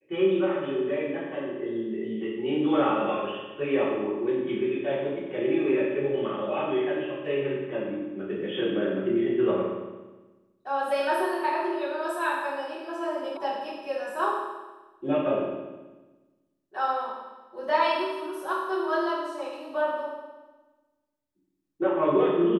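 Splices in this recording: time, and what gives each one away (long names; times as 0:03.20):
0:13.37: cut off before it has died away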